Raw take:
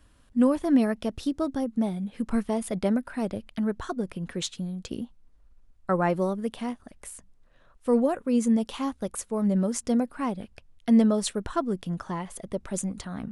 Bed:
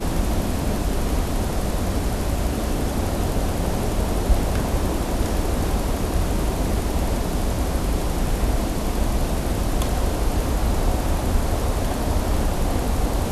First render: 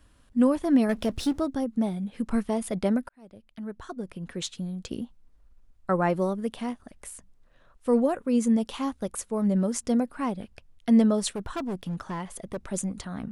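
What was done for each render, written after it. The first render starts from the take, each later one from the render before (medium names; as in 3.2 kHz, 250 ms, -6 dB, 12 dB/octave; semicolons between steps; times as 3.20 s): 0.89–1.40 s: power-law waveshaper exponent 0.7; 3.09–4.75 s: fade in; 11.32–12.57 s: hard clipper -27.5 dBFS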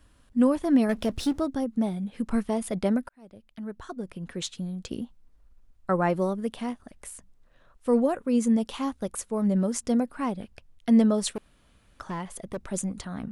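11.38–12.00 s: room tone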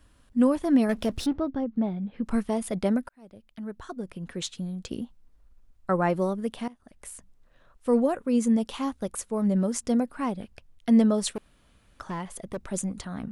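1.26–2.25 s: distance through air 310 m; 6.68–7.11 s: fade in, from -21.5 dB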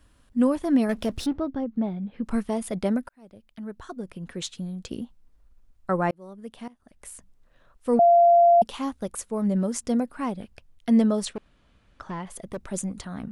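6.11–7.12 s: fade in; 7.99–8.62 s: bleep 689 Hz -12.5 dBFS; 11.25–12.27 s: distance through air 85 m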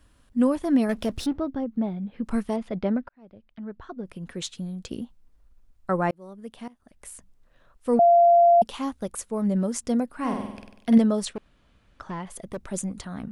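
2.56–4.06 s: distance through air 230 m; 10.18–10.98 s: flutter echo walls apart 8.3 m, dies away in 0.81 s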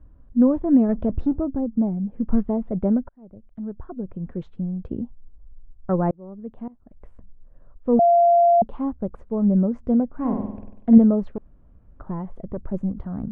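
low-pass 1 kHz 12 dB/octave; tilt EQ -2.5 dB/octave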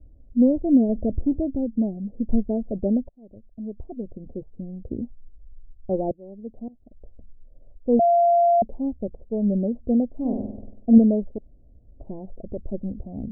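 steep low-pass 710 Hz 48 dB/octave; peaking EQ 170 Hz -13 dB 0.26 oct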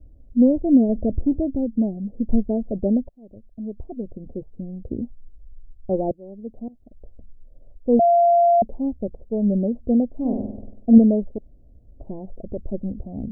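trim +2 dB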